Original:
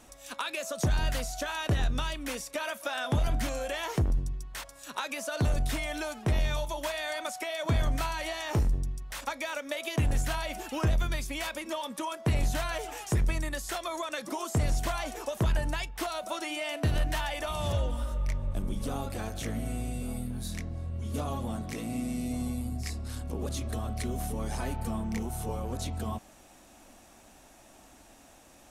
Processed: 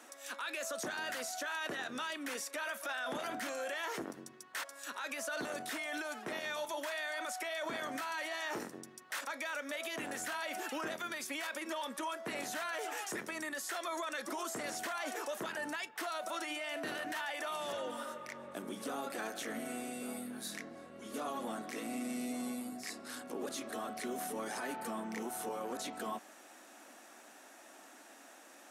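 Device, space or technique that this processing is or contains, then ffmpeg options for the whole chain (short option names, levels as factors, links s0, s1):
laptop speaker: -af "highpass=f=260:w=0.5412,highpass=f=260:w=1.3066,equalizer=f=1400:t=o:w=0.5:g=5,equalizer=f=1800:t=o:w=0.43:g=5,alimiter=level_in=2:limit=0.0631:level=0:latency=1:release=18,volume=0.501,volume=0.891"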